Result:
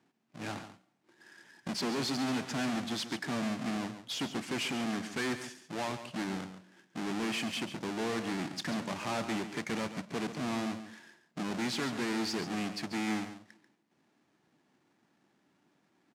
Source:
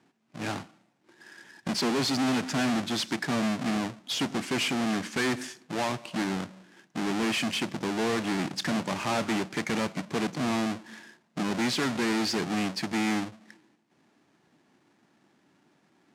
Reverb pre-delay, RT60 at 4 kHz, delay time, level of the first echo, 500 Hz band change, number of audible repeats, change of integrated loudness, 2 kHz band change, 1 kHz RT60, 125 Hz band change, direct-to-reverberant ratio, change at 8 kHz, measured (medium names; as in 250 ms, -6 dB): no reverb, no reverb, 139 ms, -11.0 dB, -6.0 dB, 1, -6.0 dB, -6.0 dB, no reverb, -6.0 dB, no reverb, -6.0 dB